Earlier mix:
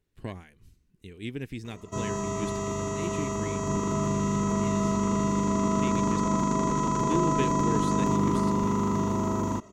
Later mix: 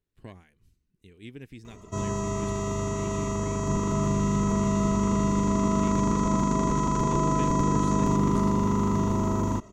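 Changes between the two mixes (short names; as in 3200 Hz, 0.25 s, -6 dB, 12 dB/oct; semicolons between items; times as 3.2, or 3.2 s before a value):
speech -7.5 dB; background: add low shelf 82 Hz +11.5 dB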